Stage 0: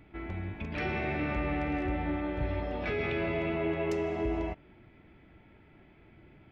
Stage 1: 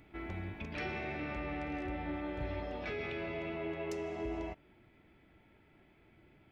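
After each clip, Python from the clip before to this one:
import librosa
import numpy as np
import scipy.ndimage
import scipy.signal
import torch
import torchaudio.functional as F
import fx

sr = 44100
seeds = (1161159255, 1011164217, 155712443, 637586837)

y = fx.bass_treble(x, sr, bass_db=-3, treble_db=7)
y = fx.rider(y, sr, range_db=4, speed_s=0.5)
y = y * librosa.db_to_amplitude(-6.0)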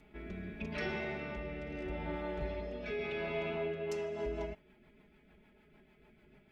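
y = x + 0.99 * np.pad(x, (int(4.8 * sr / 1000.0), 0))[:len(x)]
y = fx.rotary_switch(y, sr, hz=0.8, then_hz=6.7, switch_at_s=3.55)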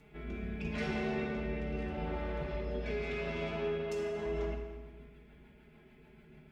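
y = 10.0 ** (-34.0 / 20.0) * np.tanh(x / 10.0 ** (-34.0 / 20.0))
y = fx.rev_fdn(y, sr, rt60_s=1.4, lf_ratio=1.35, hf_ratio=0.75, size_ms=39.0, drr_db=-1.5)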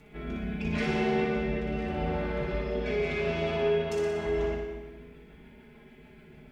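y = fx.room_flutter(x, sr, wall_m=10.3, rt60_s=0.76)
y = y * librosa.db_to_amplitude(5.5)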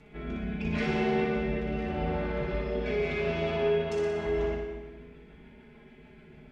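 y = fx.air_absorb(x, sr, metres=50.0)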